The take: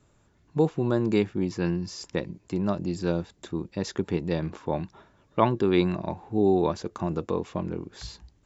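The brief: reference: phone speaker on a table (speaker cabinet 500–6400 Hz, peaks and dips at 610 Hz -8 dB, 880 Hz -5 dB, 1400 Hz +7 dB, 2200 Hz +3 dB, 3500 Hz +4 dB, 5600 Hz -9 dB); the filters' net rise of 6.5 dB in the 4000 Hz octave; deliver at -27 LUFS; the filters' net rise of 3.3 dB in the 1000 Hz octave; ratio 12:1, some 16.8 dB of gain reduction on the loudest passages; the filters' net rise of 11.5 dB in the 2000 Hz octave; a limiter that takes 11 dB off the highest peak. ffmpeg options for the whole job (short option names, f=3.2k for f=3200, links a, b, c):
-af "equalizer=f=1k:t=o:g=4,equalizer=f=2k:t=o:g=8.5,equalizer=f=4k:t=o:g=3.5,acompressor=threshold=-28dB:ratio=12,alimiter=limit=-23.5dB:level=0:latency=1,highpass=f=500:w=0.5412,highpass=f=500:w=1.3066,equalizer=f=610:t=q:w=4:g=-8,equalizer=f=880:t=q:w=4:g=-5,equalizer=f=1.4k:t=q:w=4:g=7,equalizer=f=2.2k:t=q:w=4:g=3,equalizer=f=3.5k:t=q:w=4:g=4,equalizer=f=5.6k:t=q:w=4:g=-9,lowpass=f=6.4k:w=0.5412,lowpass=f=6.4k:w=1.3066,volume=15dB"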